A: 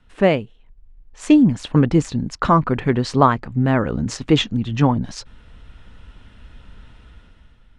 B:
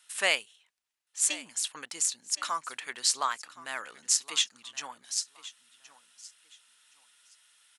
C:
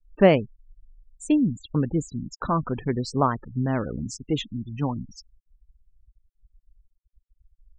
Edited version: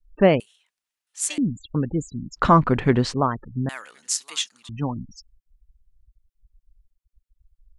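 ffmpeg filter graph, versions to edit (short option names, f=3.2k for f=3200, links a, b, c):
-filter_complex "[1:a]asplit=2[a][b];[2:a]asplit=4[c][d][e][f];[c]atrim=end=0.402[g];[a]atrim=start=0.398:end=1.382[h];[d]atrim=start=1.378:end=2.38[i];[0:a]atrim=start=2.36:end=3.14[j];[e]atrim=start=3.12:end=3.692[k];[b]atrim=start=3.688:end=4.692[l];[f]atrim=start=4.688[m];[g][h]acrossfade=d=0.004:c1=hsin:c2=hsin[n];[n][i]acrossfade=d=0.004:c1=hsin:c2=hsin[o];[o][j]acrossfade=d=0.02:c1=tri:c2=tri[p];[p][k]acrossfade=d=0.02:c1=tri:c2=tri[q];[q][l]acrossfade=d=0.004:c1=hsin:c2=hsin[r];[r][m]acrossfade=d=0.004:c1=hsin:c2=hsin"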